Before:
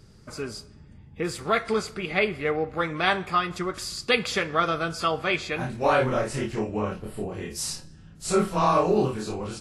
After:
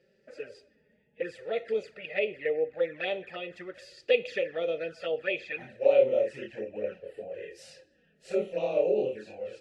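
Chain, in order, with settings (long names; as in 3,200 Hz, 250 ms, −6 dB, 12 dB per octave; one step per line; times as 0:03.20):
flanger swept by the level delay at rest 5.8 ms, full sweep at −21 dBFS
formant filter e
level +7.5 dB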